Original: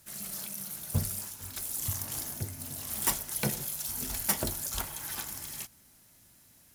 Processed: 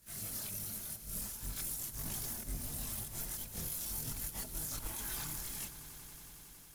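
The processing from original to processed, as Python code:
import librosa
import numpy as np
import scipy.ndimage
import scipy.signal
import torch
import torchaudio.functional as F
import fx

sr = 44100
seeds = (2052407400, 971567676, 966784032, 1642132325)

y = fx.octave_divider(x, sr, octaves=1, level_db=4.0)
y = fx.high_shelf(y, sr, hz=11000.0, db=2.5)
y = fx.over_compress(y, sr, threshold_db=-35.0, ratio=-0.5)
y = fx.chorus_voices(y, sr, voices=6, hz=0.44, base_ms=23, depth_ms=4.7, mix_pct=60)
y = fx.echo_swell(y, sr, ms=92, loudest=5, wet_db=-18.0)
y = F.gain(torch.from_numpy(y), -3.5).numpy()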